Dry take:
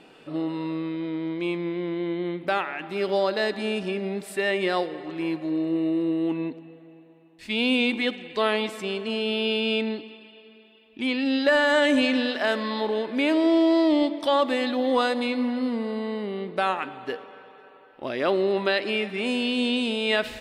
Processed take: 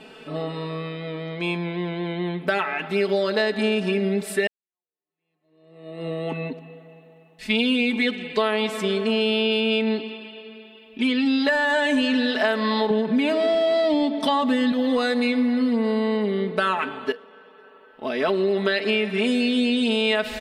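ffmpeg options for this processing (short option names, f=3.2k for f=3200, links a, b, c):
-filter_complex "[0:a]asettb=1/sr,asplit=3[a][b][c];[a]atrim=end=12.904[d];[b]atrim=start=12.9:end=14.72,asetpts=PTS-STARTPTS,afade=t=in:d=0.004:c=qsin,afade=t=out:st=1.816:d=0.004:c=qsin,equalizer=f=170:w=1.5:g=15[e];[c]atrim=start=14.716[f];[d][e]acrossfade=d=0.004:c1=hsin:c2=qsin[g];[g][f]acrossfade=d=0.004:c1=qsin:c2=hsin,asplit=3[h][i][j];[h]atrim=end=4.47,asetpts=PTS-STARTPTS,afade=t=out:st=4.466:d=0.004:c=hsin[k];[i]atrim=start=4.47:end=17.12,asetpts=PTS-STARTPTS,afade=t=in:d=1.59:c=exp,afade=t=out:st=12.646:d=0.004:c=hsin:silence=0.237137[l];[j]atrim=start=17.12,asetpts=PTS-STARTPTS,afade=t=in:d=1.69:silence=0.237137[m];[k][l][m]concat=n=3:v=0:a=1,aecho=1:1:4.6:0.89,acompressor=threshold=-22dB:ratio=6,volume=4dB"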